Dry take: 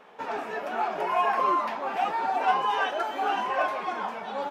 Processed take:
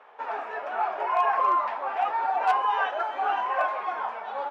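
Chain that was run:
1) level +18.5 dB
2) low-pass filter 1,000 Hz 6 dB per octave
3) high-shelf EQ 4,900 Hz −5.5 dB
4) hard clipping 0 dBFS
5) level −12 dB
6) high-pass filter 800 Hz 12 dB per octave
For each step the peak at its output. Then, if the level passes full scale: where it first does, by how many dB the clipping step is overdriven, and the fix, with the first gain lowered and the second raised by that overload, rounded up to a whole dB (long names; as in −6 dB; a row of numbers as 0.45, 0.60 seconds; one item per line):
+5.0, +3.0, +3.0, 0.0, −12.0, −11.5 dBFS
step 1, 3.0 dB
step 1 +15.5 dB, step 5 −9 dB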